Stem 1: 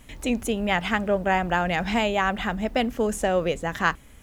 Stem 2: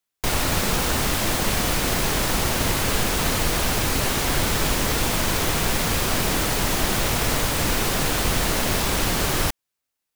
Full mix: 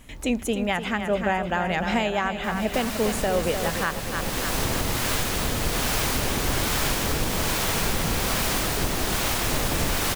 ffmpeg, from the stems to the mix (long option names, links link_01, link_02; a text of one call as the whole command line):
ffmpeg -i stem1.wav -i stem2.wav -filter_complex "[0:a]volume=1dB,asplit=3[link_01][link_02][link_03];[link_02]volume=-8.5dB[link_04];[1:a]acrossover=split=620[link_05][link_06];[link_05]aeval=exprs='val(0)*(1-0.5/2+0.5/2*cos(2*PI*1.2*n/s))':channel_layout=same[link_07];[link_06]aeval=exprs='val(0)*(1-0.5/2-0.5/2*cos(2*PI*1.2*n/s))':channel_layout=same[link_08];[link_07][link_08]amix=inputs=2:normalize=0,adelay=2200,volume=-0.5dB,asplit=2[link_09][link_10];[link_10]volume=-5.5dB[link_11];[link_03]apad=whole_len=544839[link_12];[link_09][link_12]sidechaincompress=threshold=-37dB:ratio=8:attack=6:release=495[link_13];[link_04][link_11]amix=inputs=2:normalize=0,aecho=0:1:300|600|900|1200|1500|1800|2100|2400|2700:1|0.57|0.325|0.185|0.106|0.0602|0.0343|0.0195|0.0111[link_14];[link_01][link_13][link_14]amix=inputs=3:normalize=0,alimiter=limit=-13dB:level=0:latency=1:release=459" out.wav